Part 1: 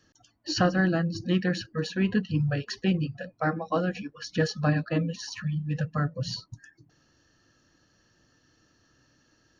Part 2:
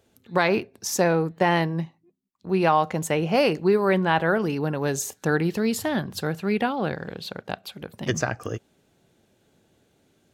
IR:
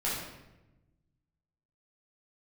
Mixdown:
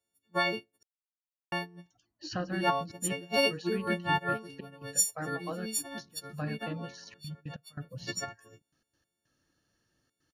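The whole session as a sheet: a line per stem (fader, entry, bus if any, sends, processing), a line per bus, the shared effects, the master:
-11.5 dB, 1.75 s, no send, trance gate ".xxxxxxxx.x.x." 142 bpm -24 dB
-6.0 dB, 0.00 s, muted 0.83–1.52 s, no send, partials quantised in pitch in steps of 4 st; upward expansion 2.5:1, over -28 dBFS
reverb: none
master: none

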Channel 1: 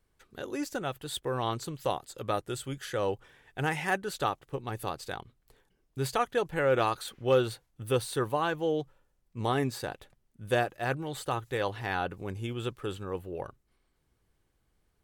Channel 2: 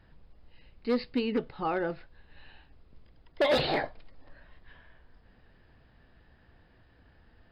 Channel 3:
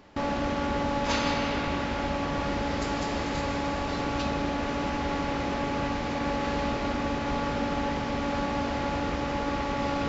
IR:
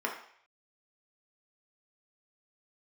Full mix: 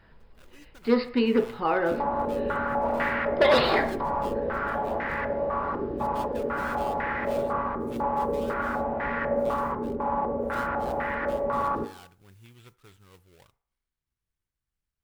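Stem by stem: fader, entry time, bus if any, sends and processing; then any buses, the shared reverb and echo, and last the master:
-13.0 dB, 0.00 s, send -20 dB, dead-time distortion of 0.2 ms; peaking EQ 470 Hz -10.5 dB 2.3 oct; modulation noise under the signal 18 dB
+1.0 dB, 0.00 s, send -6 dB, none
-6.0 dB, 1.75 s, send -8.5 dB, step-sequenced low-pass 4 Hz 390–1800 Hz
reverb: on, RT60 0.60 s, pre-delay 3 ms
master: none

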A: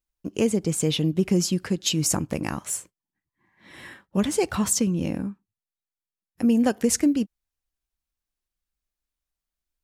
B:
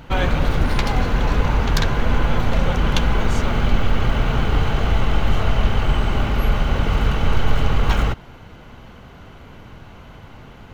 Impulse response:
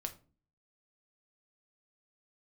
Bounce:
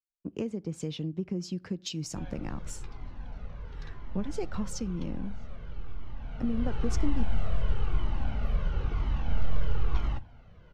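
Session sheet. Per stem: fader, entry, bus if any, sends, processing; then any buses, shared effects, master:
-2.0 dB, 0.00 s, send -15.5 dB, compression 5:1, threshold -30 dBFS, peak gain reduction 13 dB; three bands expanded up and down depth 70%
6.15 s -23.5 dB -> 6.84 s -12 dB, 2.05 s, send -7 dB, Shepard-style flanger falling 1 Hz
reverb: on, RT60 0.40 s, pre-delay 6 ms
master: FFT filter 200 Hz 0 dB, 3.3 kHz -6 dB, 5.4 kHz -5 dB, 10 kHz -21 dB

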